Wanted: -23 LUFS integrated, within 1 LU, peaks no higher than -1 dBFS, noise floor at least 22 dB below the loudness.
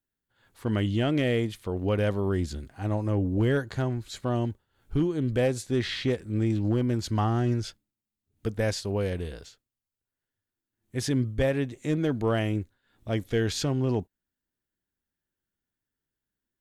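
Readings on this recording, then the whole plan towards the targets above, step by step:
clipped 0.4%; flat tops at -17.0 dBFS; loudness -28.0 LUFS; peak -17.0 dBFS; loudness target -23.0 LUFS
-> clip repair -17 dBFS; gain +5 dB

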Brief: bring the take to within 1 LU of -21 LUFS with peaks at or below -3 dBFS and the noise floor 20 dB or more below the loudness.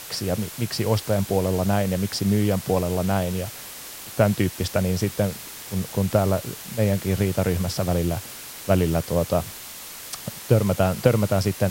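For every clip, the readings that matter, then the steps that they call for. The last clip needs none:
noise floor -39 dBFS; noise floor target -44 dBFS; loudness -23.5 LUFS; peak -3.0 dBFS; loudness target -21.0 LUFS
-> noise print and reduce 6 dB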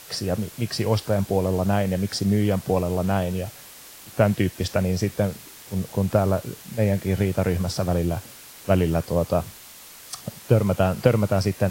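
noise floor -44 dBFS; loudness -23.5 LUFS; peak -3.0 dBFS; loudness target -21.0 LUFS
-> gain +2.5 dB; limiter -3 dBFS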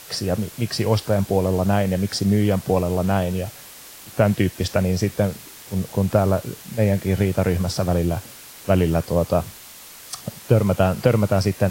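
loudness -21.5 LUFS; peak -3.0 dBFS; noise floor -42 dBFS

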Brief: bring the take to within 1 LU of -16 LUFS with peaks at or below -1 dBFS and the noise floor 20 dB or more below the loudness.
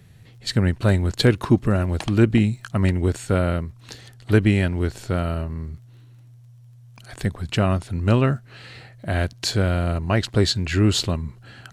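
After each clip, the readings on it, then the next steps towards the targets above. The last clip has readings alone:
ticks 24/s; loudness -22.0 LUFS; peak -4.5 dBFS; loudness target -16.0 LUFS
-> de-click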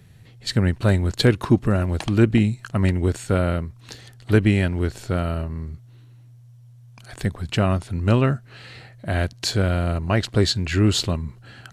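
ticks 0.085/s; loudness -22.0 LUFS; peak -4.5 dBFS; loudness target -16.0 LUFS
-> gain +6 dB; limiter -1 dBFS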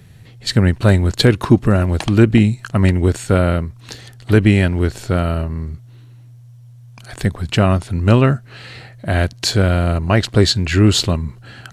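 loudness -16.0 LUFS; peak -1.0 dBFS; noise floor -42 dBFS

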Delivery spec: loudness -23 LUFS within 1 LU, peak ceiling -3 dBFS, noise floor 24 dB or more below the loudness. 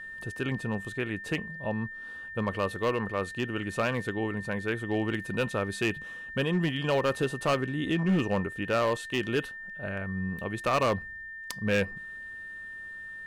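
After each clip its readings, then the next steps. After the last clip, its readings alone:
clipped 1.2%; flat tops at -20.0 dBFS; steady tone 1800 Hz; tone level -39 dBFS; loudness -30.5 LUFS; peak -20.0 dBFS; loudness target -23.0 LUFS
-> clip repair -20 dBFS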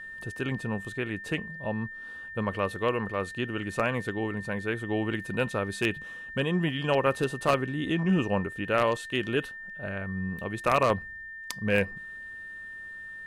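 clipped 0.0%; steady tone 1800 Hz; tone level -39 dBFS
-> notch 1800 Hz, Q 30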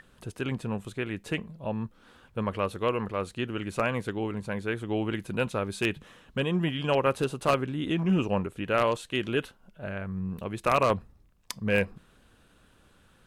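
steady tone none; loudness -29.5 LUFS; peak -10.5 dBFS; loudness target -23.0 LUFS
-> gain +6.5 dB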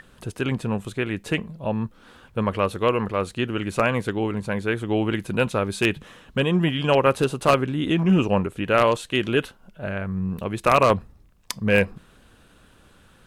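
loudness -23.0 LUFS; peak -4.0 dBFS; noise floor -55 dBFS

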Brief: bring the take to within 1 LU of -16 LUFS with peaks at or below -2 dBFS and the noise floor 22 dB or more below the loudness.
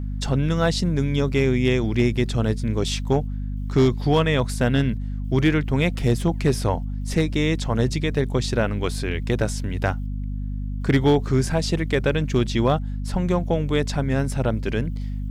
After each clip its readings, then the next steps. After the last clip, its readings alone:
clipped 0.3%; flat tops at -10.5 dBFS; hum 50 Hz; harmonics up to 250 Hz; hum level -25 dBFS; loudness -23.0 LUFS; peak -10.5 dBFS; loudness target -16.0 LUFS
-> clip repair -10.5 dBFS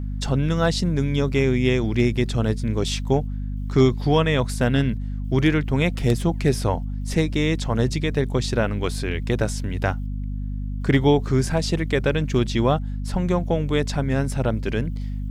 clipped 0.0%; hum 50 Hz; harmonics up to 250 Hz; hum level -25 dBFS
-> de-hum 50 Hz, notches 5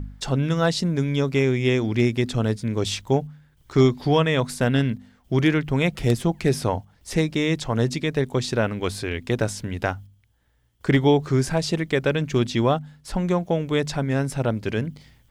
hum none; loudness -23.0 LUFS; peak -5.5 dBFS; loudness target -16.0 LUFS
-> gain +7 dB; limiter -2 dBFS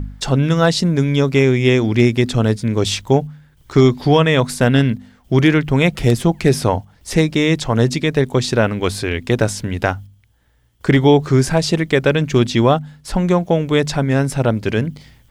loudness -16.5 LUFS; peak -2.0 dBFS; noise floor -53 dBFS

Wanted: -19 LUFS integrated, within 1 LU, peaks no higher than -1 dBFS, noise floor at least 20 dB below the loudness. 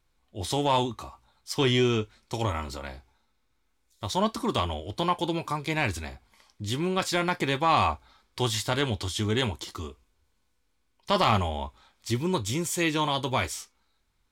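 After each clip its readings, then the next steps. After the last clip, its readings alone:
loudness -27.5 LUFS; peak -10.5 dBFS; loudness target -19.0 LUFS
-> gain +8.5 dB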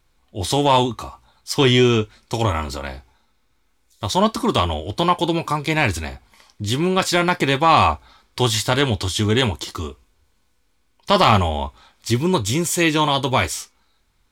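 loudness -19.0 LUFS; peak -2.0 dBFS; noise floor -63 dBFS

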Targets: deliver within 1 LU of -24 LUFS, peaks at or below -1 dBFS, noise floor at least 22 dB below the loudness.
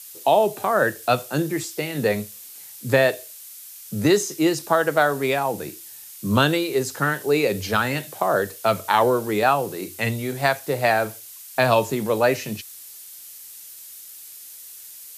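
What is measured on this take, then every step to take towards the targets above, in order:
noise floor -42 dBFS; noise floor target -44 dBFS; loudness -22.0 LUFS; peak -4.5 dBFS; loudness target -24.0 LUFS
-> noise print and reduce 6 dB; gain -2 dB

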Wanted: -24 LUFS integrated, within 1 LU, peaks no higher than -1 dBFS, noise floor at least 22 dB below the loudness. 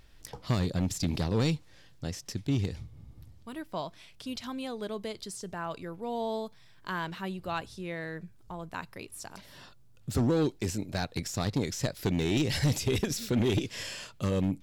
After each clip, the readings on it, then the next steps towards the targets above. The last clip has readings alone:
clipped 1.0%; flat tops at -21.0 dBFS; loudness -32.5 LUFS; peak -21.0 dBFS; loudness target -24.0 LUFS
-> clip repair -21 dBFS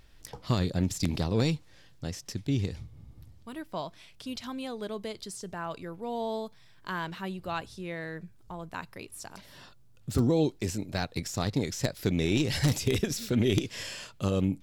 clipped 0.0%; loudness -31.5 LUFS; peak -12.0 dBFS; loudness target -24.0 LUFS
-> gain +7.5 dB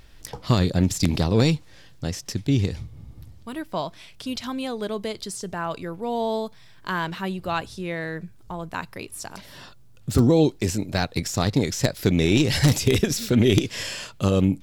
loudness -24.0 LUFS; peak -4.5 dBFS; noise floor -48 dBFS

